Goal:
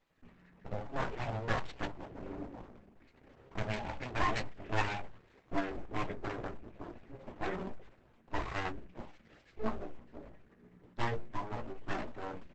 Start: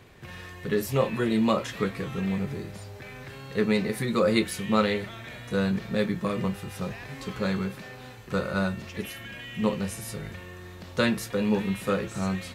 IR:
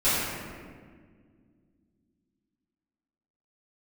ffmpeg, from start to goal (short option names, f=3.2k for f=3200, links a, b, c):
-filter_complex "[0:a]lowpass=f=2.5k:w=0.5412,lowpass=f=2.5k:w=1.3066,afwtdn=0.02,highpass=f=140:p=1,bandreject=f=60:t=h:w=6,bandreject=f=120:t=h:w=6,bandreject=f=180:t=h:w=6,bandreject=f=240:t=h:w=6,bandreject=f=300:t=h:w=6,bandreject=f=360:t=h:w=6,bandreject=f=420:t=h:w=6,bandreject=f=480:t=h:w=6,flanger=delay=1.5:depth=7.3:regen=12:speed=0.23:shape=sinusoidal,aeval=exprs='abs(val(0))':c=same,asplit=3[a][b][c];[a]afade=t=out:st=9.5:d=0.02[d];[b]flanger=delay=16:depth=2.1:speed=1.4,afade=t=in:st=9.5:d=0.02,afade=t=out:st=11.93:d=0.02[e];[c]afade=t=in:st=11.93:d=0.02[f];[d][e][f]amix=inputs=3:normalize=0,asplit=2[g][h];[h]adelay=17,volume=-8.5dB[i];[g][i]amix=inputs=2:normalize=0" -ar 48000 -c:a libopus -b:a 10k